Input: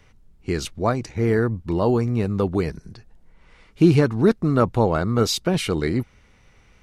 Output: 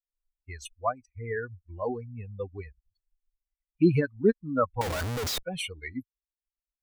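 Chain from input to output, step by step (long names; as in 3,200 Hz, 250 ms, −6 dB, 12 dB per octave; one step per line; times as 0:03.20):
spectral dynamics exaggerated over time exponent 3
low-shelf EQ 200 Hz −7.5 dB
0:04.81–0:05.43: comparator with hysteresis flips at −41 dBFS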